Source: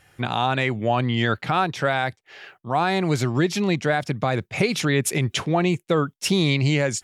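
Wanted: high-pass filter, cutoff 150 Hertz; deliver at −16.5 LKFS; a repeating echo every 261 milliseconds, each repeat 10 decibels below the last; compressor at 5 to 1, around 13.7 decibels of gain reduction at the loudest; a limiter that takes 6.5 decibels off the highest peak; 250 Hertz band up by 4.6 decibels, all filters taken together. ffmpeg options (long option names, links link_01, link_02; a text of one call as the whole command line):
ffmpeg -i in.wav -af "highpass=150,equalizer=frequency=250:width_type=o:gain=7.5,acompressor=threshold=-29dB:ratio=5,alimiter=limit=-23.5dB:level=0:latency=1,aecho=1:1:261|522|783|1044:0.316|0.101|0.0324|0.0104,volume=17dB" out.wav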